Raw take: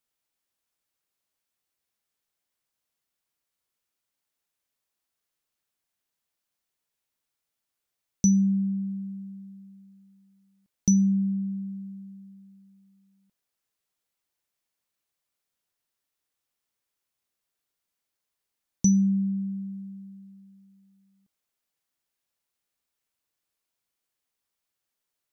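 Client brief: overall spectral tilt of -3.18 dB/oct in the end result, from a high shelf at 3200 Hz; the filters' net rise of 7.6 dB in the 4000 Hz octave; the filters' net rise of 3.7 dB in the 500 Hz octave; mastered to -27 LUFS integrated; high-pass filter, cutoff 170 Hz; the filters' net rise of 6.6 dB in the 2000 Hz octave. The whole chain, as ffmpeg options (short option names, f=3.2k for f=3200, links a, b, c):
-af "highpass=170,equalizer=f=500:t=o:g=5,equalizer=f=2k:t=o:g=4,highshelf=f=3.2k:g=5,equalizer=f=4k:t=o:g=5.5,volume=-1.5dB"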